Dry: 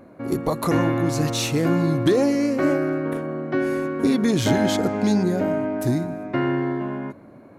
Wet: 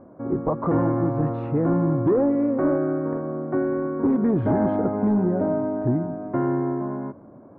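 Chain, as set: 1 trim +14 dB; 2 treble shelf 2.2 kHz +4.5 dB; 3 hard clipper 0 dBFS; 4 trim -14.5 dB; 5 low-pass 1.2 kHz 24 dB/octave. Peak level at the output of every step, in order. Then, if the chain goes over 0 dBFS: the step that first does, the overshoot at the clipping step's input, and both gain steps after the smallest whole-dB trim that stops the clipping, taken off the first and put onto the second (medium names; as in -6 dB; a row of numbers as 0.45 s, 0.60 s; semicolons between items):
+7.5 dBFS, +8.5 dBFS, 0.0 dBFS, -14.5 dBFS, -13.5 dBFS; step 1, 8.5 dB; step 1 +5 dB, step 4 -5.5 dB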